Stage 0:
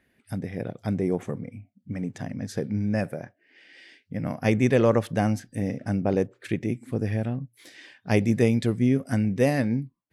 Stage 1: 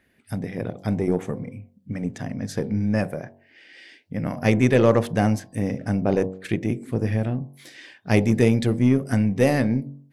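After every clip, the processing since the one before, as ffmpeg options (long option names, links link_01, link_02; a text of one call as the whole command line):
ffmpeg -i in.wav -af "bandreject=frequency=46.94:width_type=h:width=4,bandreject=frequency=93.88:width_type=h:width=4,bandreject=frequency=140.82:width_type=h:width=4,bandreject=frequency=187.76:width_type=h:width=4,bandreject=frequency=234.7:width_type=h:width=4,bandreject=frequency=281.64:width_type=h:width=4,bandreject=frequency=328.58:width_type=h:width=4,bandreject=frequency=375.52:width_type=h:width=4,bandreject=frequency=422.46:width_type=h:width=4,bandreject=frequency=469.4:width_type=h:width=4,bandreject=frequency=516.34:width_type=h:width=4,bandreject=frequency=563.28:width_type=h:width=4,bandreject=frequency=610.22:width_type=h:width=4,bandreject=frequency=657.16:width_type=h:width=4,bandreject=frequency=704.1:width_type=h:width=4,bandreject=frequency=751.04:width_type=h:width=4,bandreject=frequency=797.98:width_type=h:width=4,bandreject=frequency=844.92:width_type=h:width=4,bandreject=frequency=891.86:width_type=h:width=4,bandreject=frequency=938.8:width_type=h:width=4,bandreject=frequency=985.74:width_type=h:width=4,bandreject=frequency=1032.68:width_type=h:width=4,bandreject=frequency=1079.62:width_type=h:width=4,aeval=exprs='0.398*(cos(1*acos(clip(val(0)/0.398,-1,1)))-cos(1*PI/2))+0.01*(cos(8*acos(clip(val(0)/0.398,-1,1)))-cos(8*PI/2))':channel_layout=same,volume=3.5dB" out.wav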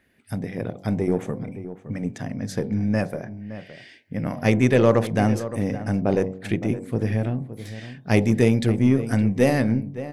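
ffmpeg -i in.wav -filter_complex "[0:a]asplit=2[link_01][link_02];[link_02]adelay=565.6,volume=-13dB,highshelf=frequency=4000:gain=-12.7[link_03];[link_01][link_03]amix=inputs=2:normalize=0" out.wav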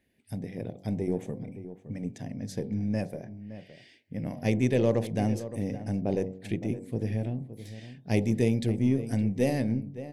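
ffmpeg -i in.wav -af "equalizer=frequency=1300:width_type=o:width=0.78:gain=-14.5,volume=-6.5dB" out.wav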